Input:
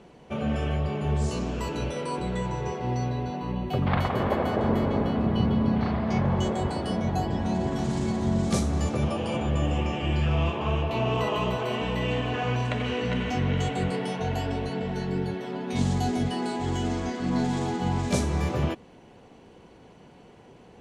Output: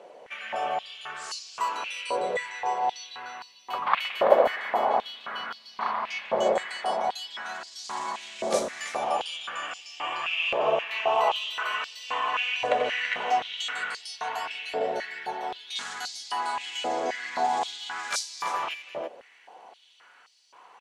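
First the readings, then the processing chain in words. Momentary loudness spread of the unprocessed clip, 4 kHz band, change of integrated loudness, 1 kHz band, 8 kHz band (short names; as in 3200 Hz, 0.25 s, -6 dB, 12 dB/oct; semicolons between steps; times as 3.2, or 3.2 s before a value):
6 LU, +5.0 dB, -1.5 dB, +4.5 dB, +2.0 dB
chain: outdoor echo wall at 57 m, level -7 dB; stepped high-pass 3.8 Hz 570–4700 Hz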